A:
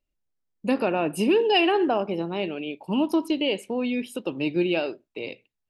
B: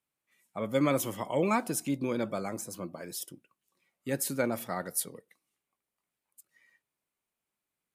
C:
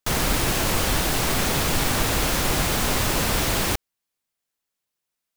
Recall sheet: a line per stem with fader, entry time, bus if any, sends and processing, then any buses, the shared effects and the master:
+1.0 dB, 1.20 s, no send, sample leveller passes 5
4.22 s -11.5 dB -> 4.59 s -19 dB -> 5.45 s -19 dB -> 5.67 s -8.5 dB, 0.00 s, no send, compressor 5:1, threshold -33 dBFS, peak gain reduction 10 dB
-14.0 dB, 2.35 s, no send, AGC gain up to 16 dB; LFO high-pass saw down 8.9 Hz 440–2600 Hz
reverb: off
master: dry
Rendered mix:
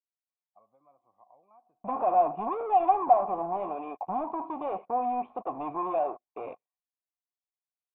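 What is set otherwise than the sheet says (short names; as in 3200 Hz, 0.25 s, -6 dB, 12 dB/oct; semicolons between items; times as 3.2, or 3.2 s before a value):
stem C: muted; master: extra vocal tract filter a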